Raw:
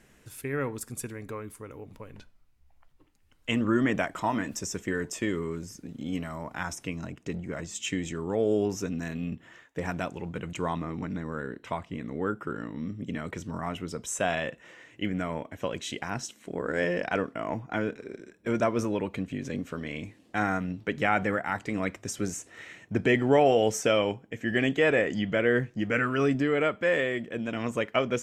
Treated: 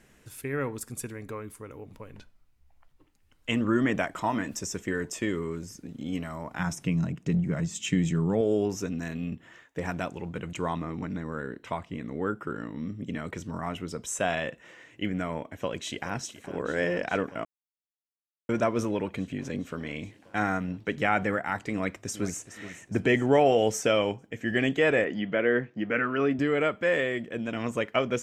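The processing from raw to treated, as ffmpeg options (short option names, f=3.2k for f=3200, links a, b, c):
-filter_complex "[0:a]asettb=1/sr,asplit=3[a][b][c];[a]atrim=end=6.594[d];[b]atrim=start=6.59:end=8.41,asetpts=PTS-STARTPTS,afade=t=in:d=0.004:c=qsin,afade=t=out:st=1.816:d=0.004:c=qsin,equalizer=f=160:t=o:w=0.77:g=13.5[e];[c]atrim=start=8.406[f];[d][e]acrossfade=d=0.004:c1=hsin:c2=qsin[g];[g][f]acrossfade=d=0.004:c1=qsin:c2=hsin,asplit=2[h][i];[i]afade=t=in:st=15.43:d=0.01,afade=t=out:st=16.15:d=0.01,aecho=0:1:420|840|1260|1680|2100|2520|2940|3360|3780|4200|4620|5040:0.199526|0.169597|0.144158|0.122534|0.104154|0.0885308|0.0752512|0.0639635|0.054369|0.0462137|0.0392816|0.0333894[j];[h][j]amix=inputs=2:normalize=0,asplit=2[k][l];[l]afade=t=in:st=21.72:d=0.01,afade=t=out:st=22.47:d=0.01,aecho=0:1:420|840|1260|1680|2100:0.199526|0.0997631|0.0498816|0.0249408|0.0124704[m];[k][m]amix=inputs=2:normalize=0,asettb=1/sr,asplit=3[n][o][p];[n]atrim=end=25.044[q];[o]atrim=start=25.04:end=26.39,asetpts=PTS-STARTPTS,afade=t=in:d=0.004:c=qsin,afade=t=out:st=1.346:d=0.004:c=qsin,highpass=180,lowpass=3.1k[r];[p]atrim=start=26.386[s];[q][r]acrossfade=d=0.004:c1=hsin:c2=qsin[t];[t][s]acrossfade=d=0.004:c1=qsin:c2=hsin,asplit=3[u][v][w];[u]atrim=end=17.45,asetpts=PTS-STARTPTS,afade=t=out:st=17.446:d=0.004:c=hsin[x];[v]atrim=start=17.45:end=18.49,asetpts=PTS-STARTPTS,volume=0[y];[w]atrim=start=18.49,asetpts=PTS-STARTPTS,afade=t=in:d=0.004:c=hsin[z];[x][y][z]concat=n=3:v=0:a=1"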